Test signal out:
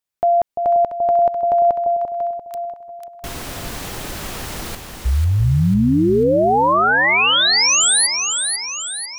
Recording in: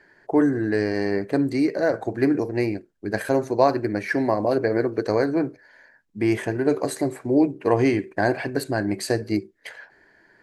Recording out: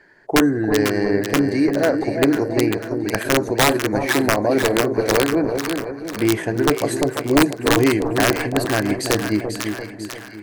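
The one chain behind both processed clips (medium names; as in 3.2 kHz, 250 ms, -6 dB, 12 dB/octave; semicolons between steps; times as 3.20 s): integer overflow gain 10 dB; two-band feedback delay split 920 Hz, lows 343 ms, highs 495 ms, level -6 dB; trim +3 dB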